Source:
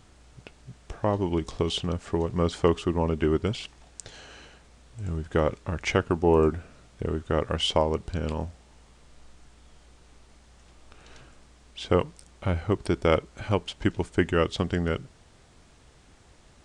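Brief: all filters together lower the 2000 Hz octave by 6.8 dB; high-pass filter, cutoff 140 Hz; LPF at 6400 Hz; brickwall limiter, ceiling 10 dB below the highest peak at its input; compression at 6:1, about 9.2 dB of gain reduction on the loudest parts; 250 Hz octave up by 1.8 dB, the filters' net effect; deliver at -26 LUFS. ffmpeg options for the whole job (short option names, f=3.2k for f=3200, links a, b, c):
-af "highpass=140,lowpass=6.4k,equalizer=f=250:t=o:g=3.5,equalizer=f=2k:t=o:g=-9,acompressor=threshold=-25dB:ratio=6,volume=9.5dB,alimiter=limit=-11dB:level=0:latency=1"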